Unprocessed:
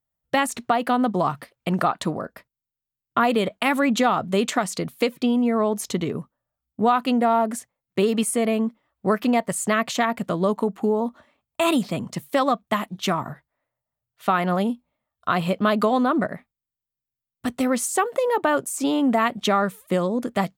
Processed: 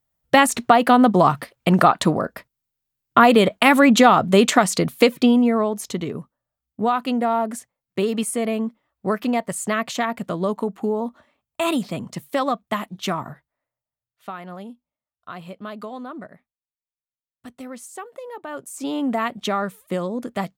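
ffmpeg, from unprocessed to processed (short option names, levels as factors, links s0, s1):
-af "volume=7.94,afade=t=out:st=5.16:d=0.56:silence=0.375837,afade=t=out:st=13.19:d=1.17:silence=0.237137,afade=t=in:st=18.46:d=0.54:silence=0.281838"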